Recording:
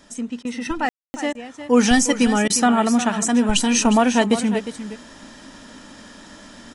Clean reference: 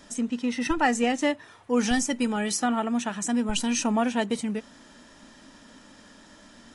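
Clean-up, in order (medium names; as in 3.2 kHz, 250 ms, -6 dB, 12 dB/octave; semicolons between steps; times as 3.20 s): room tone fill 0.89–1.14 s; interpolate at 0.43/1.33/2.48 s, 18 ms; inverse comb 357 ms -11.5 dB; gain correction -8.5 dB, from 1.60 s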